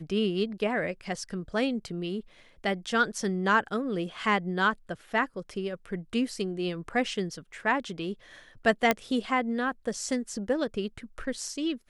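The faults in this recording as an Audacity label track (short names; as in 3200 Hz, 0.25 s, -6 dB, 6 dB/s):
8.910000	8.910000	pop -8 dBFS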